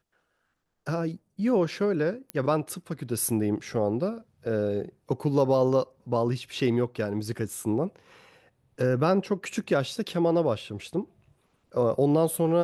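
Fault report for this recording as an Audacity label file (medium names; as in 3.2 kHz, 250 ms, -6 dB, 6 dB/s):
2.300000	2.300000	pop -17 dBFS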